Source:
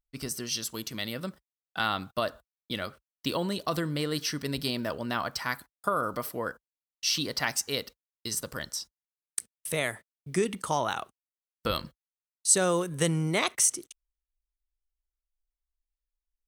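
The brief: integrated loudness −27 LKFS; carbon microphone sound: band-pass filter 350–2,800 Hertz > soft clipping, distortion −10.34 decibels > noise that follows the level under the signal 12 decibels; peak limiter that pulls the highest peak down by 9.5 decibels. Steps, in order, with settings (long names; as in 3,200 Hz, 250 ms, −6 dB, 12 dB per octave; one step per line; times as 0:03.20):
brickwall limiter −18 dBFS
band-pass filter 350–2,800 Hz
soft clipping −29.5 dBFS
noise that follows the level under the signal 12 dB
level +12 dB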